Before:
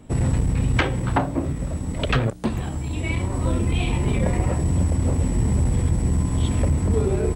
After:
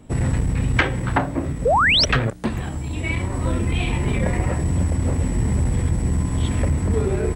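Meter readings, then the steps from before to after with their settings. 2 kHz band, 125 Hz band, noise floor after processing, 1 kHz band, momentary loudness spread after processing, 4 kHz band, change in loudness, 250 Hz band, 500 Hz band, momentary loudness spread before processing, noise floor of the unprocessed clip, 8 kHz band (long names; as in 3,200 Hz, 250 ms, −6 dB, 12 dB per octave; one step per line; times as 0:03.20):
+8.0 dB, 0.0 dB, −28 dBFS, +5.5 dB, 9 LU, +11.0 dB, +1.5 dB, 0.0 dB, +2.0 dB, 6 LU, −29 dBFS, +1.5 dB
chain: dynamic equaliser 1,800 Hz, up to +6 dB, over −46 dBFS, Q 1.6
sound drawn into the spectrogram rise, 0:01.65–0:02.05, 430–6,000 Hz −16 dBFS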